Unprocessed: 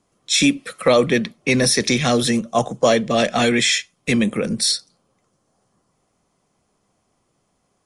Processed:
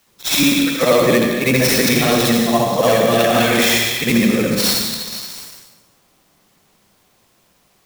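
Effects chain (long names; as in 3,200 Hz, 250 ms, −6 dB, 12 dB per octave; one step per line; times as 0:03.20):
every overlapping window played backwards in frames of 171 ms
in parallel at +0.5 dB: brickwall limiter −18 dBFS, peak gain reduction 11 dB
on the sum: dense smooth reverb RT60 1.3 s, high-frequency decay 0.7×, pre-delay 80 ms, DRR 2.5 dB
noise gate with hold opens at −56 dBFS
on a send: echo through a band-pass that steps 239 ms, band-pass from 3,200 Hz, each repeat 0.7 octaves, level −7.5 dB
on the sum: bit-depth reduction 10 bits, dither triangular
converter with an unsteady clock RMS 0.025 ms
level +1.5 dB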